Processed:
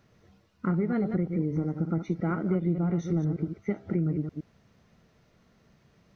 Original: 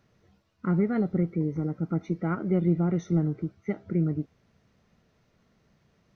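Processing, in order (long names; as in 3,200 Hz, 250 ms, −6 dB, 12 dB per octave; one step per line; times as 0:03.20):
delay that plays each chunk backwards 116 ms, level −8.5 dB
downward compressor 3 to 1, threshold −28 dBFS, peak gain reduction 8.5 dB
level +3 dB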